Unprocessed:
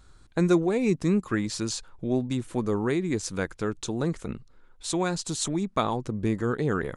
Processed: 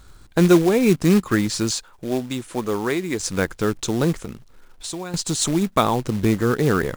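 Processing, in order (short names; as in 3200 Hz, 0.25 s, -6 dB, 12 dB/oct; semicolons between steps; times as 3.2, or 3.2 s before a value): 1.71–3.2 low shelf 290 Hz -11.5 dB; 4.14–5.14 compressor 4:1, threshold -38 dBFS, peak gain reduction 13 dB; short-mantissa float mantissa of 2-bit; gain +7.5 dB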